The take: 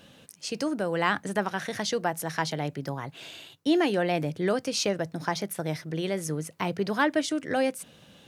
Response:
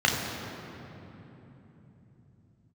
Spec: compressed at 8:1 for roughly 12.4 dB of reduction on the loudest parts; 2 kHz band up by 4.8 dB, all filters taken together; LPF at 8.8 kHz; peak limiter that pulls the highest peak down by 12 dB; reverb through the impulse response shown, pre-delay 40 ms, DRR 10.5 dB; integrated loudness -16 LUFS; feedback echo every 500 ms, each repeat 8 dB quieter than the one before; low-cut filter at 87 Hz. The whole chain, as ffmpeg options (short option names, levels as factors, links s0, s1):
-filter_complex "[0:a]highpass=87,lowpass=8800,equalizer=f=2000:t=o:g=6,acompressor=threshold=0.0282:ratio=8,alimiter=level_in=1.41:limit=0.0631:level=0:latency=1,volume=0.708,aecho=1:1:500|1000|1500|2000|2500:0.398|0.159|0.0637|0.0255|0.0102,asplit=2[s0][s1];[1:a]atrim=start_sample=2205,adelay=40[s2];[s1][s2]afir=irnorm=-1:irlink=0,volume=0.0473[s3];[s0][s3]amix=inputs=2:normalize=0,volume=11.2"